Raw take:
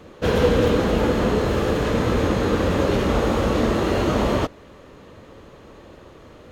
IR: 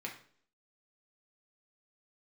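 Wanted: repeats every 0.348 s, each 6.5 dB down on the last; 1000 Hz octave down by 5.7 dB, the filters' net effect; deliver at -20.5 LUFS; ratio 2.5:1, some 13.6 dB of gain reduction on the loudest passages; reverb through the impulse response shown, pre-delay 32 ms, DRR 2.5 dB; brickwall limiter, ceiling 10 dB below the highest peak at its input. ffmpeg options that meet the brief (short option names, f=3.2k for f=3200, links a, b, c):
-filter_complex "[0:a]equalizer=f=1k:t=o:g=-7.5,acompressor=threshold=-37dB:ratio=2.5,alimiter=level_in=7dB:limit=-24dB:level=0:latency=1,volume=-7dB,aecho=1:1:348|696|1044|1392|1740|2088:0.473|0.222|0.105|0.0491|0.0231|0.0109,asplit=2[a][b];[1:a]atrim=start_sample=2205,adelay=32[c];[b][c]afir=irnorm=-1:irlink=0,volume=-3dB[d];[a][d]amix=inputs=2:normalize=0,volume=17.5dB"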